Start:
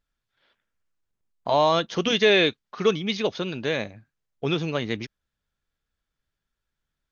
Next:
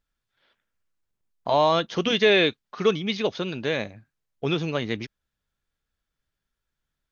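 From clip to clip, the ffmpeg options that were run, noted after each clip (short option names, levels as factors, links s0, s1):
-filter_complex "[0:a]acrossover=split=5200[s0][s1];[s1]acompressor=threshold=0.00501:ratio=4:attack=1:release=60[s2];[s0][s2]amix=inputs=2:normalize=0"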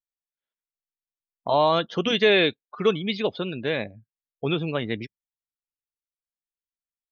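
-af "afftdn=nr=29:nf=-39"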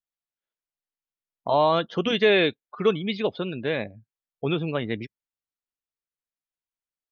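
-af "highshelf=f=5300:g=-10"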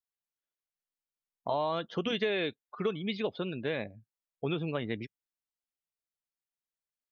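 -af "acompressor=threshold=0.0794:ratio=6,volume=0.562"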